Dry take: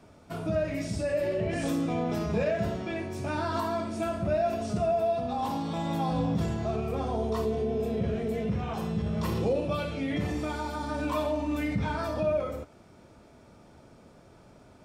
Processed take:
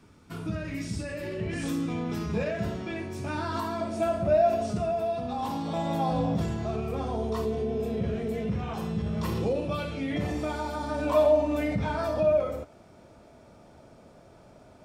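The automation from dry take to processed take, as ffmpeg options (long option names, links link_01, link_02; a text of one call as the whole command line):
ffmpeg -i in.wav -af "asetnsamples=nb_out_samples=441:pad=0,asendcmd='2.35 equalizer g -4.5;3.81 equalizer g 6;4.71 equalizer g -2.5;5.66 equalizer g 6.5;6.41 equalizer g -2;10.15 equalizer g 4.5;11.06 equalizer g 11.5;11.76 equalizer g 5',equalizer=frequency=640:width_type=o:width=0.58:gain=-13" out.wav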